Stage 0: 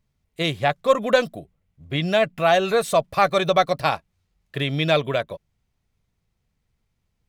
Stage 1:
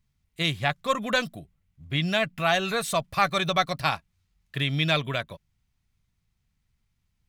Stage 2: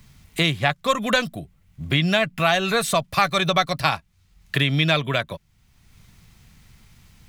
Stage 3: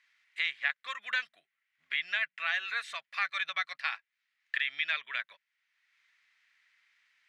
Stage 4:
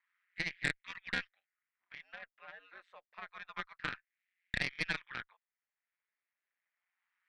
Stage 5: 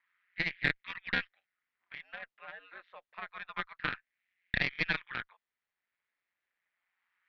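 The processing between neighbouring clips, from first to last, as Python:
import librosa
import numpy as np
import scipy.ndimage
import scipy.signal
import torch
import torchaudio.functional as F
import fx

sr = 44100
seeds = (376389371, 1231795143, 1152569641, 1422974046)

y1 = fx.peak_eq(x, sr, hz=500.0, db=-11.0, octaves=1.5)
y2 = fx.band_squash(y1, sr, depth_pct=70)
y2 = y2 * librosa.db_to_amplitude(4.5)
y3 = fx.ladder_bandpass(y2, sr, hz=2100.0, resonance_pct=55)
y4 = y3 * np.sin(2.0 * np.pi * 91.0 * np.arange(len(y3)) / sr)
y4 = fx.wah_lfo(y4, sr, hz=0.28, low_hz=450.0, high_hz=2200.0, q=2.1)
y4 = fx.cheby_harmonics(y4, sr, harmonics=(4, 7), levels_db=(-12, -37), full_scale_db=-18.5)
y5 = scipy.signal.sosfilt(scipy.signal.butter(4, 4200.0, 'lowpass', fs=sr, output='sos'), y4)
y5 = y5 * librosa.db_to_amplitude(4.5)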